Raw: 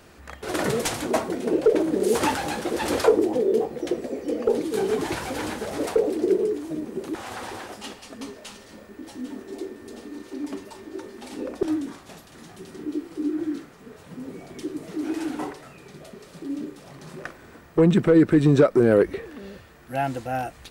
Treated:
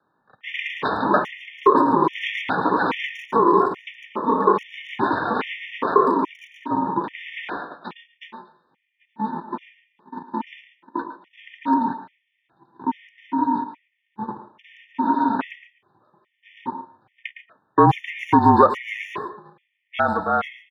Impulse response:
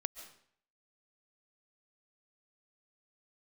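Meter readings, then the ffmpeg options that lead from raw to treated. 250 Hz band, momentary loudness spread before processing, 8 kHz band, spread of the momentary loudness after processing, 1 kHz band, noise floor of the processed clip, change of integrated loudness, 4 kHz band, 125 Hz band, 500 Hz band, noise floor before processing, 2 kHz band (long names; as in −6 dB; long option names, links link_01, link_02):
−0.5 dB, 21 LU, below −20 dB, 19 LU, +13.0 dB, −73 dBFS, +2.0 dB, +0.5 dB, −2.5 dB, −2.0 dB, −49 dBFS, +6.0 dB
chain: -filter_complex "[0:a]agate=range=-26dB:threshold=-35dB:ratio=16:detection=peak,asplit=2[link_01][link_02];[link_02]acompressor=threshold=-27dB:ratio=6,volume=0dB[link_03];[link_01][link_03]amix=inputs=2:normalize=0,highpass=frequency=160:width_type=q:width=0.5412,highpass=frequency=160:width_type=q:width=1.307,lowpass=frequency=3000:width_type=q:width=0.5176,lowpass=frequency=3000:width_type=q:width=0.7071,lowpass=frequency=3000:width_type=q:width=1.932,afreqshift=290,acontrast=34,aeval=exprs='val(0)*sin(2*PI*330*n/s)':channel_layout=same,asplit=2[link_04][link_05];[link_05]adelay=110,highpass=300,lowpass=3400,asoftclip=type=hard:threshold=-12dB,volume=-10dB[link_06];[link_04][link_06]amix=inputs=2:normalize=0[link_07];[1:a]atrim=start_sample=2205,afade=type=out:start_time=0.2:duration=0.01,atrim=end_sample=9261[link_08];[link_07][link_08]afir=irnorm=-1:irlink=0,afftfilt=real='re*gt(sin(2*PI*1.2*pts/sr)*(1-2*mod(floor(b*sr/1024/1800),2)),0)':imag='im*gt(sin(2*PI*1.2*pts/sr)*(1-2*mod(floor(b*sr/1024/1800),2)),0)':win_size=1024:overlap=0.75,volume=2dB"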